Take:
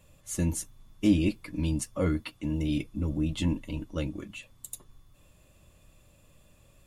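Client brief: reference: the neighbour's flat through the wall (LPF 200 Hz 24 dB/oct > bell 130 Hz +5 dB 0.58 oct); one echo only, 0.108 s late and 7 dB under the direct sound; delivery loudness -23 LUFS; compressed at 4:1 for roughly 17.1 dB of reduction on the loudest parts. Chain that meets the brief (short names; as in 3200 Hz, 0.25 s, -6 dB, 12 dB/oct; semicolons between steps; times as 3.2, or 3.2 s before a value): compressor 4:1, threshold -39 dBFS; LPF 200 Hz 24 dB/oct; bell 130 Hz +5 dB 0.58 oct; echo 0.108 s -7 dB; gain +21.5 dB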